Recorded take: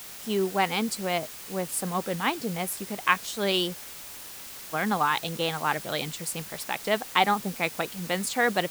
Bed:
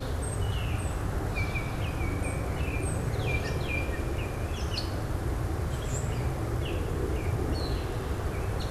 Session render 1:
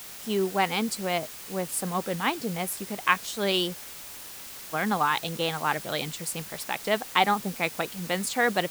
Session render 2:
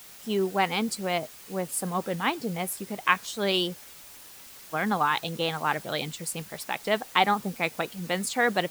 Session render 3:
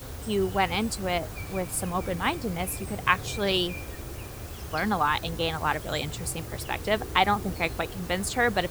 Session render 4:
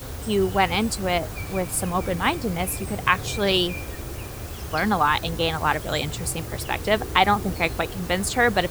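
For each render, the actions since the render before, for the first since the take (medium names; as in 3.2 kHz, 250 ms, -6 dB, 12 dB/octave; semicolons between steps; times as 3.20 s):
no audible change
noise reduction 6 dB, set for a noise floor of -42 dBFS
add bed -7.5 dB
trim +4.5 dB; peak limiter -3 dBFS, peak gain reduction 2.5 dB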